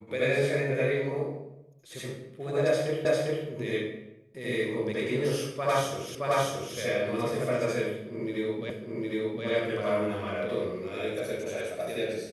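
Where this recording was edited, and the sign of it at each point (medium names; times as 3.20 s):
3.05 s: repeat of the last 0.4 s
6.15 s: repeat of the last 0.62 s
8.70 s: repeat of the last 0.76 s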